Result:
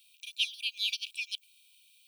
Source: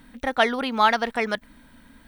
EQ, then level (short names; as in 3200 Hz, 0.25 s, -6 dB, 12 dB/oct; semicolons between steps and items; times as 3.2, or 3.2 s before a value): brick-wall FIR high-pass 2300 Hz; 0.0 dB